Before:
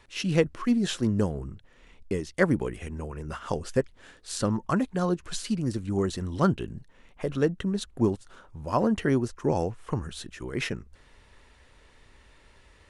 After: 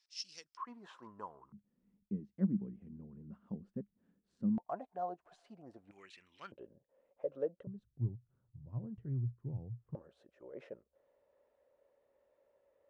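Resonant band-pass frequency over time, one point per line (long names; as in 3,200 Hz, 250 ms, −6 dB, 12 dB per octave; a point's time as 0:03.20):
resonant band-pass, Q 8.6
5,200 Hz
from 0:00.57 1,000 Hz
from 0:01.52 200 Hz
from 0:04.58 710 Hz
from 0:05.91 2,400 Hz
from 0:06.52 550 Hz
from 0:07.67 120 Hz
from 0:09.95 560 Hz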